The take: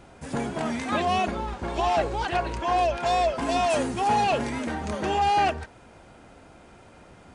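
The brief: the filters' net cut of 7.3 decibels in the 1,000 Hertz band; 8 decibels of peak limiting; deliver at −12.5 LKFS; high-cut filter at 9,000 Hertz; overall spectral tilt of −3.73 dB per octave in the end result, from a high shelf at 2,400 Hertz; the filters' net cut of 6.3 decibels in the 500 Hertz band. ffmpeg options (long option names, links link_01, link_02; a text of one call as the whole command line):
ffmpeg -i in.wav -af "lowpass=9000,equalizer=frequency=500:width_type=o:gain=-5.5,equalizer=frequency=1000:width_type=o:gain=-9,highshelf=frequency=2400:gain=7,volume=19dB,alimiter=limit=-3.5dB:level=0:latency=1" out.wav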